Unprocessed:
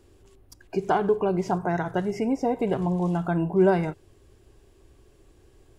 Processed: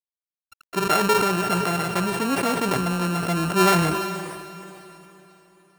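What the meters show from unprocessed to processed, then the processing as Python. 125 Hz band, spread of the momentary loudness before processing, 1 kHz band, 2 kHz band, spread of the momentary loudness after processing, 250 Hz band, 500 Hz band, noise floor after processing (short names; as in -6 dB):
+2.0 dB, 7 LU, +6.0 dB, +10.0 dB, 14 LU, +1.0 dB, -0.5 dB, under -85 dBFS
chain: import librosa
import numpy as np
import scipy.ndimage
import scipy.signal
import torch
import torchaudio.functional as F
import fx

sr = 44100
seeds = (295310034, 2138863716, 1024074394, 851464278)

y = np.r_[np.sort(x[:len(x) // 32 * 32].reshape(-1, 32), axis=1).ravel(), x[len(x) // 32 * 32:]]
y = fx.noise_reduce_blind(y, sr, reduce_db=12)
y = fx.peak_eq(y, sr, hz=1600.0, db=3.0, octaves=1.2)
y = np.sign(y) * np.maximum(np.abs(y) - 10.0 ** (-53.0 / 20.0), 0.0)
y = fx.echo_diffused(y, sr, ms=457, feedback_pct=41, wet_db=-13)
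y = fx.sustainer(y, sr, db_per_s=31.0)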